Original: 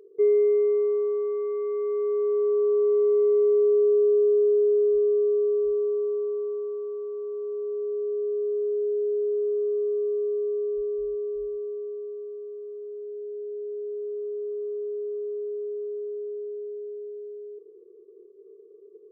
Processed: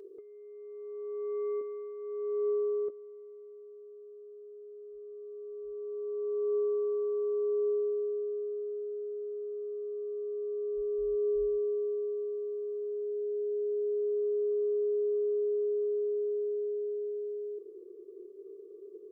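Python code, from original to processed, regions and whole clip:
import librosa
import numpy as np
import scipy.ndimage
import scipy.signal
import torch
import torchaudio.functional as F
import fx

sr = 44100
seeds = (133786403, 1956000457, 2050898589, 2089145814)

y = fx.chain(x, sr, fx.highpass(hz=120.0, slope=12),
    fx.over_compress(threshold_db=-26.0, ratio=-0.5), at=(1.61, 2.9))
y = y + 0.42 * np.pad(y, (int(3.2 * sr / 1000.0), 0))[:len(y)]
y = fx.over_compress(y, sr, threshold_db=-31.0, ratio=-0.5)
y = y * librosa.db_to_amplitude(-2.0)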